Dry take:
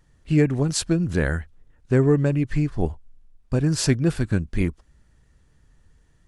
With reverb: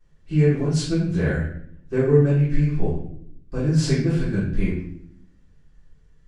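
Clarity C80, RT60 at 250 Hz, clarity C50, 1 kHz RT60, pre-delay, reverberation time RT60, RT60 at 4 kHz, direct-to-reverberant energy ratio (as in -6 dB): 6.5 dB, 1.1 s, 2.5 dB, 0.55 s, 3 ms, 0.65 s, 0.50 s, -13.5 dB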